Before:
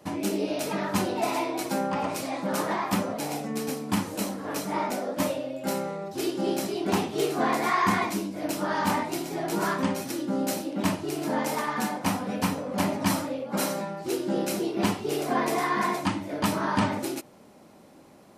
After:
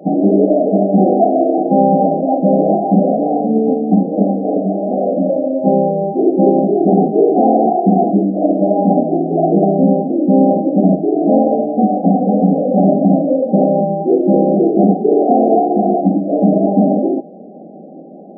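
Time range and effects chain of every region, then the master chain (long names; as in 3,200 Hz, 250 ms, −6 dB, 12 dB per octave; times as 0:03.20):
0:04.59–0:05.59: downward compressor 3 to 1, threshold −30 dBFS + double-tracking delay 26 ms −8.5 dB
whole clip: brick-wall band-pass 160–810 Hz; dynamic equaliser 340 Hz, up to −3 dB, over −43 dBFS, Q 3.9; boost into a limiter +19.5 dB; level −1 dB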